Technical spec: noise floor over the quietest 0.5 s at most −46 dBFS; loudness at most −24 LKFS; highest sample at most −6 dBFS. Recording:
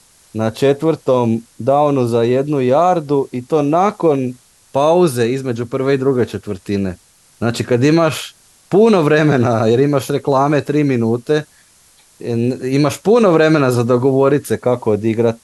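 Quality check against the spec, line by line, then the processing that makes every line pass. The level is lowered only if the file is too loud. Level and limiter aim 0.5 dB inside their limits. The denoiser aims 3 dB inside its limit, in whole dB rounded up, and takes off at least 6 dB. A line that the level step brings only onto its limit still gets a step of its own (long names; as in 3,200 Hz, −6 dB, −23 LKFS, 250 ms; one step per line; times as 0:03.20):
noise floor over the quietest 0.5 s −50 dBFS: in spec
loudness −15.0 LKFS: out of spec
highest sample −2.5 dBFS: out of spec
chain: level −9.5 dB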